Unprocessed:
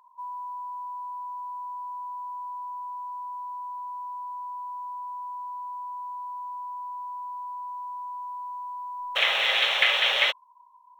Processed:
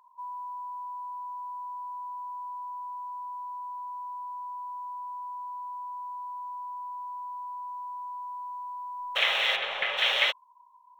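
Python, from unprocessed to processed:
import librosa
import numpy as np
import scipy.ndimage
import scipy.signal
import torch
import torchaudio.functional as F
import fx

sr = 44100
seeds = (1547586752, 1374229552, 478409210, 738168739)

y = fx.lowpass(x, sr, hz=1200.0, slope=6, at=(9.55, 9.97), fade=0.02)
y = y * 10.0 ** (-2.0 / 20.0)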